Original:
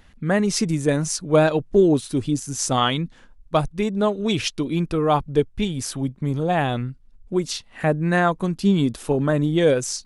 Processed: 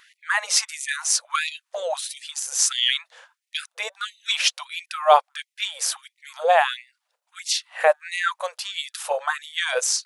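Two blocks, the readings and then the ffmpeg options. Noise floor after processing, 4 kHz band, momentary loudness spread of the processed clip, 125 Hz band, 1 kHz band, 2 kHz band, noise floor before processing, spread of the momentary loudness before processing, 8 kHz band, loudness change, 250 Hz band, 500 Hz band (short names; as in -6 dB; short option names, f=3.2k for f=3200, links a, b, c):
-82 dBFS, +6.0 dB, 13 LU, under -40 dB, +2.0 dB, +3.5 dB, -51 dBFS, 8 LU, +6.0 dB, -1.5 dB, under -40 dB, -5.5 dB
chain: -af "aeval=exprs='0.596*(cos(1*acos(clip(val(0)/0.596,-1,1)))-cos(1*PI/2))+0.00473*(cos(3*acos(clip(val(0)/0.596,-1,1)))-cos(3*PI/2))':c=same,afftfilt=real='re*gte(b*sr/1024,440*pow(1900/440,0.5+0.5*sin(2*PI*1.5*pts/sr)))':imag='im*gte(b*sr/1024,440*pow(1900/440,0.5+0.5*sin(2*PI*1.5*pts/sr)))':win_size=1024:overlap=0.75,volume=6dB"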